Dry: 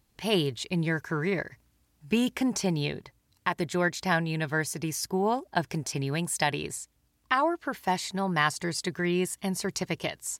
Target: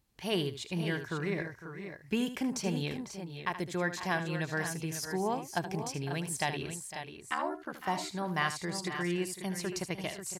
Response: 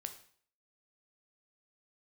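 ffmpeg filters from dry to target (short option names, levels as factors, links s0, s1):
-filter_complex "[0:a]asettb=1/sr,asplit=3[s0][s1][s2];[s0]atrim=end=6.794[s3];[s1]atrim=start=6.79:end=7.8,asetpts=PTS-STARTPTS,afade=t=in:d=0.004:c=qsin,afade=t=out:st=1.006:d=0.004:c=qsin,aeval=exprs='val(0)*sin(2*PI*37*n/s)':c=same[s4];[s2]atrim=start=7.796[s5];[s3][s4]acrossfade=d=0.004:c1=hsin:c2=qsin[s6];[s6][s5]acrossfade=d=0.004:c1=qsin:c2=hsin,asplit=2[s7][s8];[s8]aecho=0:1:75|505|541:0.266|0.2|0.335[s9];[s7][s9]amix=inputs=2:normalize=0,volume=0.501"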